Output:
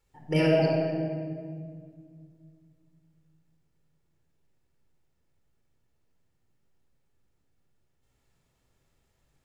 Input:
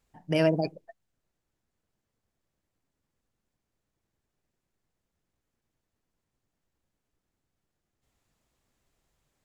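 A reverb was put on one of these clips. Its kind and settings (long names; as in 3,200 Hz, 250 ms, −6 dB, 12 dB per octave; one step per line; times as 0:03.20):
rectangular room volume 3,900 cubic metres, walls mixed, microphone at 4.3 metres
level −3 dB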